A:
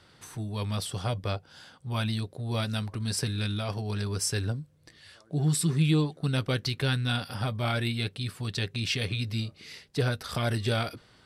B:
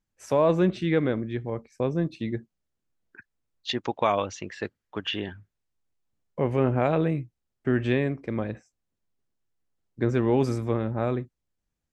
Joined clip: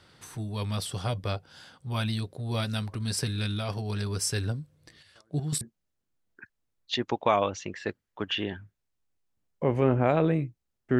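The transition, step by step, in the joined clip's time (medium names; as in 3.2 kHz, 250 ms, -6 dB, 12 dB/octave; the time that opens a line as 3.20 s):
A
4.97–5.61 s: square tremolo 5.4 Hz, depth 60%, duty 30%
5.61 s: go over to B from 2.37 s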